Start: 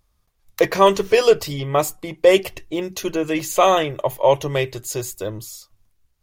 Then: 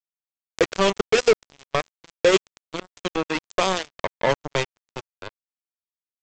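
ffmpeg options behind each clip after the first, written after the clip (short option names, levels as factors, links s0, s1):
-filter_complex "[0:a]acrossover=split=390|3000[s0][s1][s2];[s1]acompressor=threshold=0.0631:ratio=3[s3];[s0][s3][s2]amix=inputs=3:normalize=0,aresample=16000,acrusher=bits=2:mix=0:aa=0.5,aresample=44100"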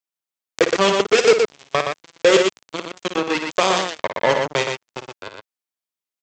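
-filter_complex "[0:a]highpass=f=200:p=1,asplit=2[s0][s1];[s1]aecho=0:1:55.39|119.5:0.355|0.562[s2];[s0][s2]amix=inputs=2:normalize=0,volume=1.5"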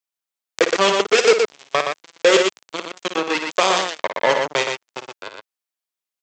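-af "highpass=f=370:p=1,volume=1.19"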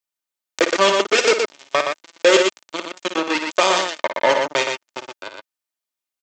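-af "aecho=1:1:3.3:0.37"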